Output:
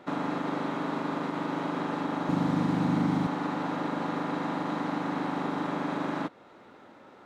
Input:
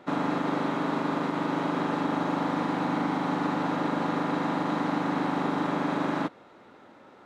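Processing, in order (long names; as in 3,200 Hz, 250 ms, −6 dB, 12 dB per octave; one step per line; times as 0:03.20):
0:02.29–0:03.27: bass and treble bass +14 dB, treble +5 dB
in parallel at −2 dB: downward compressor, threshold −37 dBFS, peak gain reduction 17.5 dB
on the sum: level −5 dB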